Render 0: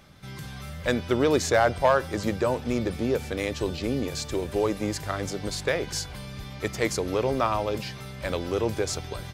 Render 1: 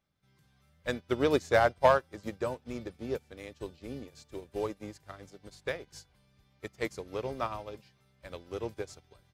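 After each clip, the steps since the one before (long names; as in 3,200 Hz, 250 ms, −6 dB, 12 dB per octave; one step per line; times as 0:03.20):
expander for the loud parts 2.5 to 1, over −36 dBFS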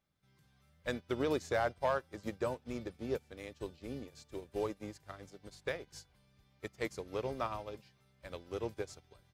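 brickwall limiter −21.5 dBFS, peak gain reduction 9.5 dB
level −2 dB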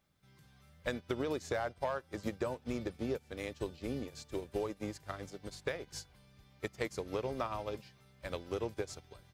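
downward compressor 6 to 1, threshold −39 dBFS, peak gain reduction 11 dB
level +6.5 dB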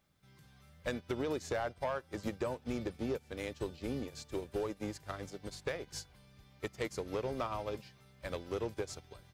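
soft clipping −28 dBFS, distortion −18 dB
level +1.5 dB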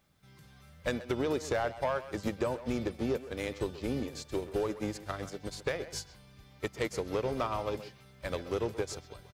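far-end echo of a speakerphone 130 ms, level −11 dB
level +4.5 dB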